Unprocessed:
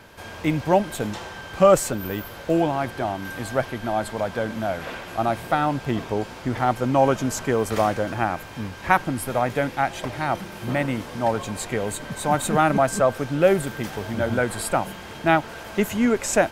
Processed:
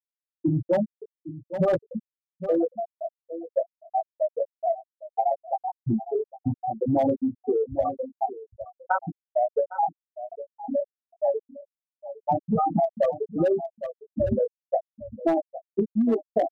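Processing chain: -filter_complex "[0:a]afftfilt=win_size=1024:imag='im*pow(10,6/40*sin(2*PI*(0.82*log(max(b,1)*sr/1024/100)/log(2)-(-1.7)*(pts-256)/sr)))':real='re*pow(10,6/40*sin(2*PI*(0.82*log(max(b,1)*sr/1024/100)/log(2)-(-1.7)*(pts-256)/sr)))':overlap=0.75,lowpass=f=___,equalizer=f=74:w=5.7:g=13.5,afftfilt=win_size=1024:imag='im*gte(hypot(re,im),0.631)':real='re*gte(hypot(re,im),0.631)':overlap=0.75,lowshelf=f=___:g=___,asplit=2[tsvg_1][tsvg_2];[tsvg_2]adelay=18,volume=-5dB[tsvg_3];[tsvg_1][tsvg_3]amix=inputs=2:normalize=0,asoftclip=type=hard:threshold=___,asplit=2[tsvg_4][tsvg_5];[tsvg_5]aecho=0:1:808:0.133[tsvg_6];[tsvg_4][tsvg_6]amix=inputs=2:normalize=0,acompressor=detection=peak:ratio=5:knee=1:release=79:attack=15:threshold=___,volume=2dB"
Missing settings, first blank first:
1300, 440, 2.5, -10dB, -23dB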